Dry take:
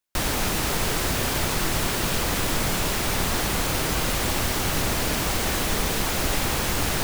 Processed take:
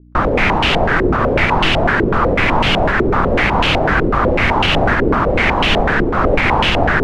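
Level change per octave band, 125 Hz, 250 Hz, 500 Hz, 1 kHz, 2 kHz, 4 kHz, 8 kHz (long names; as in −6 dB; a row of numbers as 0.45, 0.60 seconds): +9.5, +11.5, +14.0, +13.5, +13.0, +7.0, −14.0 decibels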